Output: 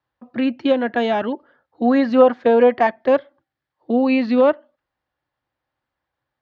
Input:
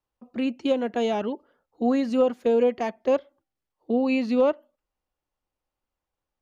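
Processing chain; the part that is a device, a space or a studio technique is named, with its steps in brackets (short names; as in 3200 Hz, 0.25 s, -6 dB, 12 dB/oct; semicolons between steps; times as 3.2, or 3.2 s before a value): 1.95–2.87 dynamic EQ 880 Hz, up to +6 dB, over -34 dBFS, Q 0.78; guitar cabinet (speaker cabinet 83–4300 Hz, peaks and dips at 130 Hz +6 dB, 190 Hz -7 dB, 430 Hz -6 dB, 1700 Hz +8 dB, 2700 Hz -4 dB); gain +7.5 dB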